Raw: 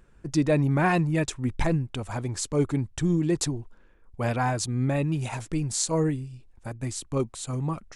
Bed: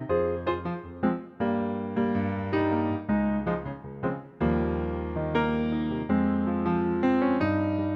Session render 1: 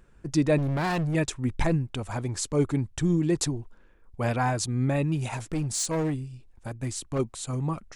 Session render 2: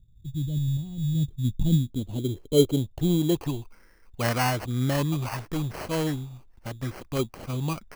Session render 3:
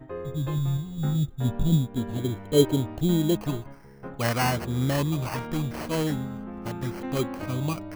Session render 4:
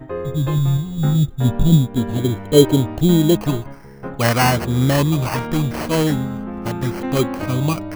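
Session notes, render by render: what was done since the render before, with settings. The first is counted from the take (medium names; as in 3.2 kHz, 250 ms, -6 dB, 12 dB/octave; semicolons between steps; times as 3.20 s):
0.58–1.15 s: overload inside the chain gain 24.5 dB; 5.30–7.19 s: overload inside the chain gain 23.5 dB
low-pass sweep 110 Hz -> 3.2 kHz, 0.98–4.70 s; sample-rate reducer 3.6 kHz, jitter 0%
add bed -10.5 dB
trim +9 dB; peak limiter -1 dBFS, peak gain reduction 2 dB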